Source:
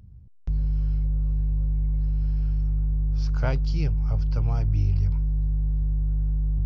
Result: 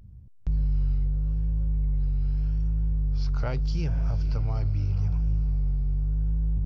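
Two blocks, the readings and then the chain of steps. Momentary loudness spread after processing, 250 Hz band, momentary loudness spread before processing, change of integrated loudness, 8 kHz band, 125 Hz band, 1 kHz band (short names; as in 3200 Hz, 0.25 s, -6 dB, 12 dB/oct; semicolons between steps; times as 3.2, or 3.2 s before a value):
2 LU, -1.5 dB, 3 LU, -2.0 dB, n/a, -1.5 dB, -2.5 dB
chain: limiter -18 dBFS, peak gain reduction 6.5 dB; diffused feedback echo 0.517 s, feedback 43%, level -13 dB; vibrato 0.82 Hz 83 cents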